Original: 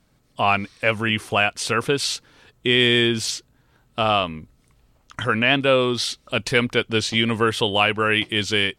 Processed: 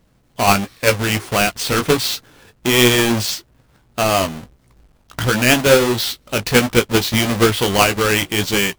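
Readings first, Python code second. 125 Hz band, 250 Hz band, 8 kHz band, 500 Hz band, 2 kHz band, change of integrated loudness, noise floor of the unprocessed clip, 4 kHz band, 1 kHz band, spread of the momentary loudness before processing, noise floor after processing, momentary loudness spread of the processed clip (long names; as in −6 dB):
+6.5 dB, +5.5 dB, +10.0 dB, +5.0 dB, +2.5 dB, +4.0 dB, −62 dBFS, +2.0 dB, +3.5 dB, 10 LU, −57 dBFS, 10 LU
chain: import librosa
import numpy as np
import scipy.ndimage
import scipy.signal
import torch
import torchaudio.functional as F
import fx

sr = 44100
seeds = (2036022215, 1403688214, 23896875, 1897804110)

p1 = fx.halfwave_hold(x, sr)
p2 = fx.level_steps(p1, sr, step_db=13)
p3 = p1 + (p2 * 10.0 ** (-3.0 / 20.0))
y = fx.chorus_voices(p3, sr, voices=2, hz=1.4, base_ms=18, depth_ms=3.0, mix_pct=30)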